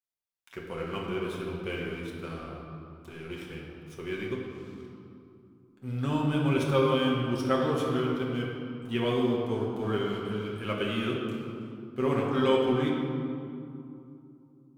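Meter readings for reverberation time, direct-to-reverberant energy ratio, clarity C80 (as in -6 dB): 2.7 s, -3.5 dB, 2.0 dB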